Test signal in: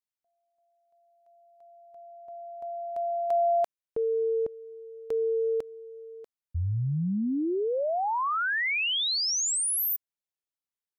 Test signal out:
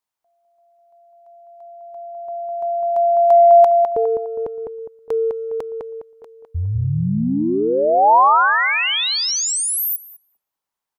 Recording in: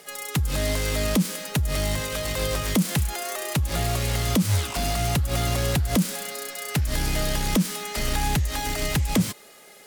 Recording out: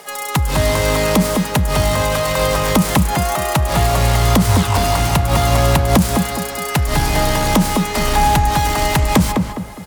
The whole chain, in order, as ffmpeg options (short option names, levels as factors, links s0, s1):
-filter_complex "[0:a]acontrast=70,equalizer=f=930:t=o:w=1:g=10,asplit=2[s0][s1];[s1]adelay=205,lowpass=f=1800:p=1,volume=0.668,asplit=2[s2][s3];[s3]adelay=205,lowpass=f=1800:p=1,volume=0.39,asplit=2[s4][s5];[s5]adelay=205,lowpass=f=1800:p=1,volume=0.39,asplit=2[s6][s7];[s7]adelay=205,lowpass=f=1800:p=1,volume=0.39,asplit=2[s8][s9];[s9]adelay=205,lowpass=f=1800:p=1,volume=0.39[s10];[s0][s2][s4][s6][s8][s10]amix=inputs=6:normalize=0"